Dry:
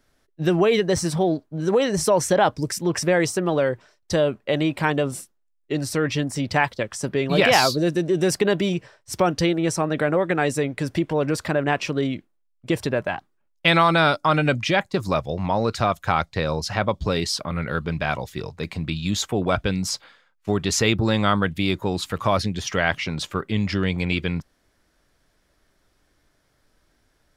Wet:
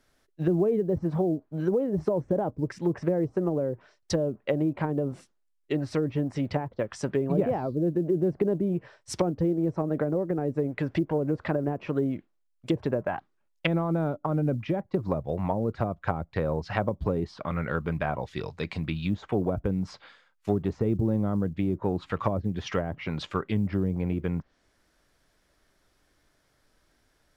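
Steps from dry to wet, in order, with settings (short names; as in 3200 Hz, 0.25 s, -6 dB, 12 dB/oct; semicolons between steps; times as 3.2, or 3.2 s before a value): treble ducked by the level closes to 410 Hz, closed at -17.5 dBFS; low shelf 300 Hz -2.5 dB; short-mantissa float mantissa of 6-bit; gain -1.5 dB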